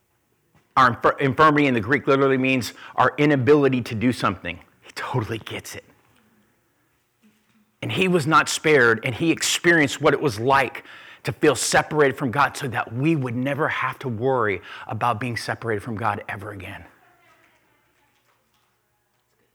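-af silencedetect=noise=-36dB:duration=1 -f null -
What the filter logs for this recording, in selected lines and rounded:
silence_start: 5.79
silence_end: 7.83 | silence_duration: 2.03
silence_start: 16.86
silence_end: 19.54 | silence_duration: 2.69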